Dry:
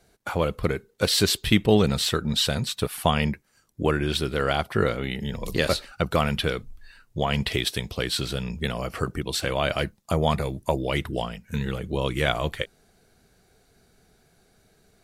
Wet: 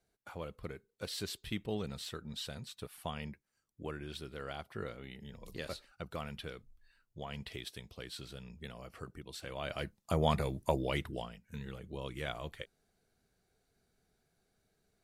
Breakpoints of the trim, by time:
9.40 s -19 dB
10.21 s -7 dB
10.82 s -7 dB
11.41 s -16 dB

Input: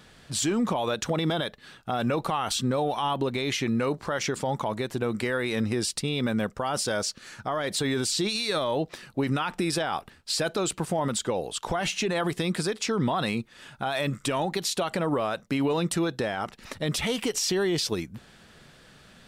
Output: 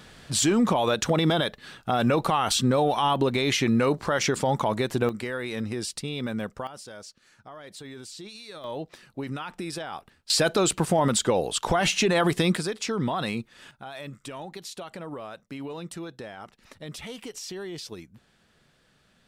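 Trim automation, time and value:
+4 dB
from 5.09 s -4 dB
from 6.67 s -15 dB
from 8.64 s -7 dB
from 10.30 s +5 dB
from 12.57 s -1.5 dB
from 13.71 s -11 dB

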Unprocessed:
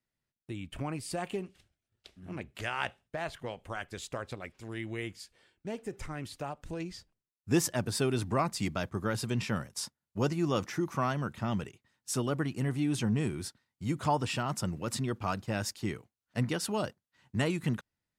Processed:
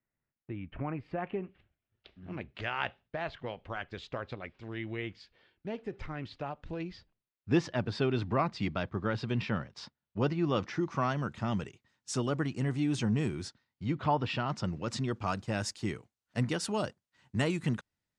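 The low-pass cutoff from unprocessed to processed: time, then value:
low-pass 24 dB/octave
1.30 s 2.3 kHz
2.29 s 4.2 kHz
10.44 s 4.2 kHz
11.38 s 7.5 kHz
13.40 s 7.5 kHz
14.07 s 3.7 kHz
15.43 s 9.1 kHz

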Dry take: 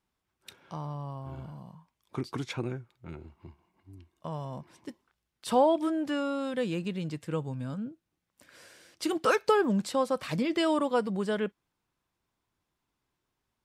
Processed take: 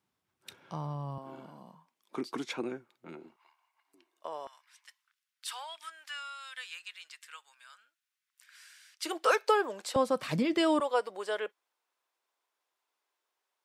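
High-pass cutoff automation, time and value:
high-pass 24 dB/octave
87 Hz
from 1.18 s 220 Hz
from 3.36 s 880 Hz
from 3.94 s 390 Hz
from 4.47 s 1.4 kHz
from 9.05 s 440 Hz
from 9.96 s 110 Hz
from 10.80 s 460 Hz

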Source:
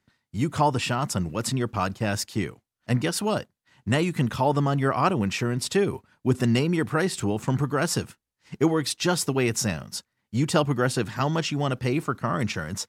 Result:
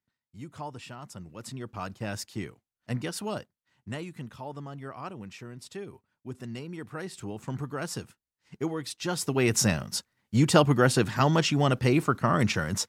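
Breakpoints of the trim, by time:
1.13 s -17 dB
2.04 s -8 dB
3.38 s -8 dB
4.33 s -17 dB
6.48 s -17 dB
7.58 s -9.5 dB
8.98 s -9.5 dB
9.57 s +2 dB

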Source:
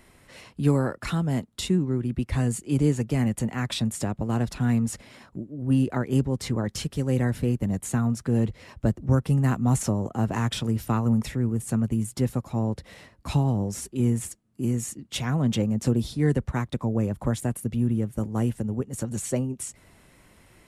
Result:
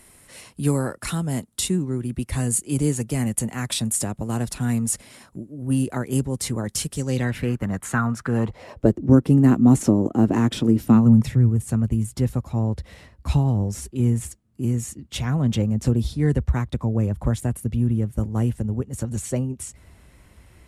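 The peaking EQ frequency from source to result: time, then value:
peaking EQ +14.5 dB 1.2 oct
6.90 s 10 kHz
7.52 s 1.4 kHz
8.32 s 1.4 kHz
8.99 s 300 Hz
10.76 s 300 Hz
11.68 s 63 Hz

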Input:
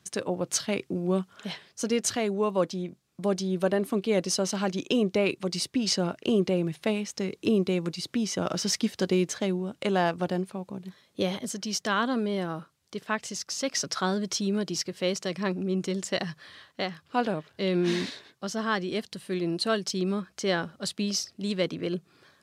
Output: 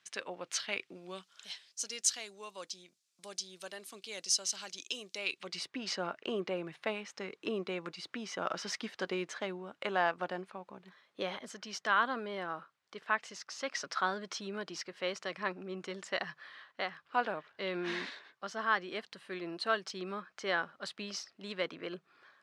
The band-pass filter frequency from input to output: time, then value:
band-pass filter, Q 1
0.83 s 2.3 kHz
1.47 s 6.2 kHz
5.15 s 6.2 kHz
5.65 s 1.4 kHz

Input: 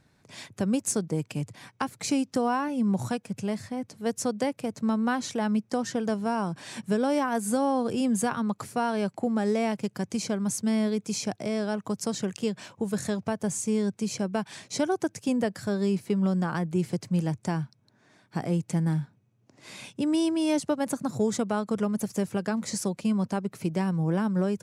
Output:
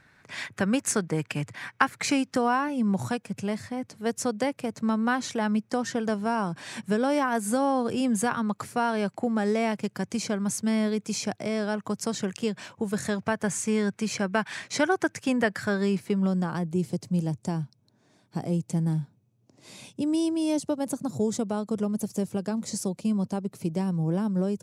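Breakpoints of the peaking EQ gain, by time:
peaking EQ 1.7 kHz 1.6 oct
2.03 s +13.5 dB
2.64 s +4 dB
12.96 s +4 dB
13.43 s +11.5 dB
15.70 s +11.5 dB
16.25 s +0.5 dB
16.83 s -8.5 dB

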